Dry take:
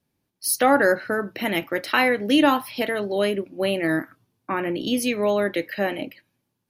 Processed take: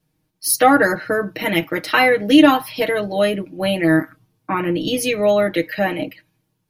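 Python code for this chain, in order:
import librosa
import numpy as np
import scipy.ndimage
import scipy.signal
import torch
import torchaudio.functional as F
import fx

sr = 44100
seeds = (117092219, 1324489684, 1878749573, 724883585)

y = fx.low_shelf(x, sr, hz=100.0, db=9.5)
y = y + 0.9 * np.pad(y, (int(6.4 * sr / 1000.0), 0))[:len(y)]
y = np.clip(y, -10.0 ** (-3.0 / 20.0), 10.0 ** (-3.0 / 20.0))
y = y * 10.0 ** (2.0 / 20.0)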